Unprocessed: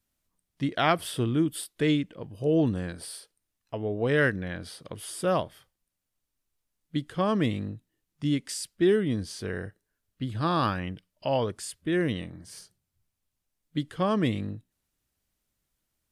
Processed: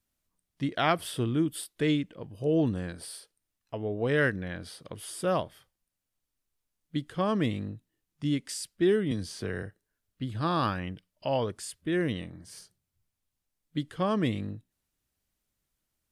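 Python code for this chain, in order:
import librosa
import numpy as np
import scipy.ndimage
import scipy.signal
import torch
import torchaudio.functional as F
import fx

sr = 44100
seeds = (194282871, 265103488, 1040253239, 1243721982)

y = fx.band_squash(x, sr, depth_pct=70, at=(9.11, 9.63))
y = F.gain(torch.from_numpy(y), -2.0).numpy()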